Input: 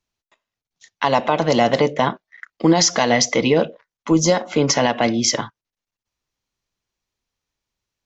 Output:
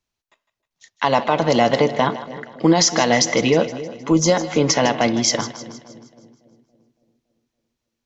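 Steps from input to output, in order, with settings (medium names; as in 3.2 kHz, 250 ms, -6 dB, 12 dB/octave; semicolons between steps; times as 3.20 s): two-band feedback delay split 540 Hz, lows 281 ms, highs 156 ms, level -14 dB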